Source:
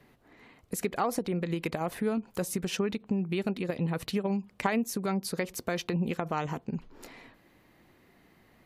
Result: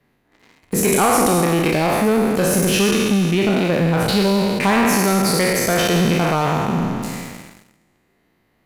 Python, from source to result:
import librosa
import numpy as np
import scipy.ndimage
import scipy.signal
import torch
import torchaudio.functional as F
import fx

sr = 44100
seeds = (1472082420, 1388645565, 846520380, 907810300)

y = fx.spec_trails(x, sr, decay_s=2.21)
y = fx.leveller(y, sr, passes=3)
y = fx.peak_eq(y, sr, hz=8800.0, db=6.0, octaves=0.62, at=(0.92, 1.45))